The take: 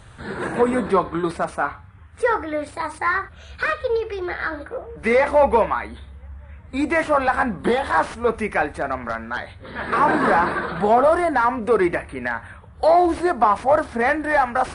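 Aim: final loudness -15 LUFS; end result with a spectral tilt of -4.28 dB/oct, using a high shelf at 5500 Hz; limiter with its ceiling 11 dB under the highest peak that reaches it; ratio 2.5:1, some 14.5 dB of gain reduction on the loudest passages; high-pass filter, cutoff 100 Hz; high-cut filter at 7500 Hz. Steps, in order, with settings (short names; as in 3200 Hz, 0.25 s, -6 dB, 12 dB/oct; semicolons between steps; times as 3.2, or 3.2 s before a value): HPF 100 Hz; LPF 7500 Hz; high shelf 5500 Hz -3.5 dB; compressor 2.5:1, threshold -35 dBFS; gain +23.5 dB; limiter -6 dBFS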